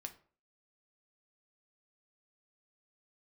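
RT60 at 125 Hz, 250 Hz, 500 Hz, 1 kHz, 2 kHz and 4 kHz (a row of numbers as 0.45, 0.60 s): 0.40, 0.45, 0.45, 0.45, 0.35, 0.30 s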